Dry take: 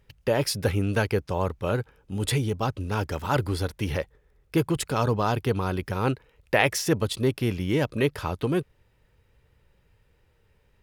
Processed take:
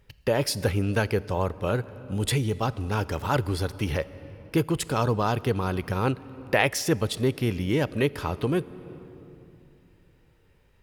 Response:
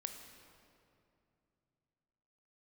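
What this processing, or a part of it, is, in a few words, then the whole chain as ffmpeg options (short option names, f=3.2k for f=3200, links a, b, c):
ducked reverb: -filter_complex "[0:a]asplit=3[a][b][c];[1:a]atrim=start_sample=2205[d];[b][d]afir=irnorm=-1:irlink=0[e];[c]apad=whole_len=477287[f];[e][f]sidechaincompress=threshold=-27dB:ratio=8:attack=20:release=641,volume=-1.5dB[g];[a][g]amix=inputs=2:normalize=0,volume=-2dB"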